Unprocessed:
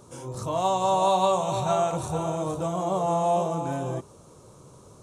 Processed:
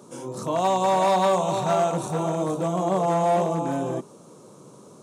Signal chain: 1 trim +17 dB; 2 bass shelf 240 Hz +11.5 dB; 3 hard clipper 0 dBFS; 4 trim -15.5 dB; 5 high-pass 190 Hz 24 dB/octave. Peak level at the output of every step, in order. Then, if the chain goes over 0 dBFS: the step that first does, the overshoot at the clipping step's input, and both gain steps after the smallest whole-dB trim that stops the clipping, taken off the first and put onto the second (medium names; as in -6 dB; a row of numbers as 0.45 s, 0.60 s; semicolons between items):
+6.0 dBFS, +7.0 dBFS, 0.0 dBFS, -15.5 dBFS, -10.0 dBFS; step 1, 7.0 dB; step 1 +10 dB, step 4 -8.5 dB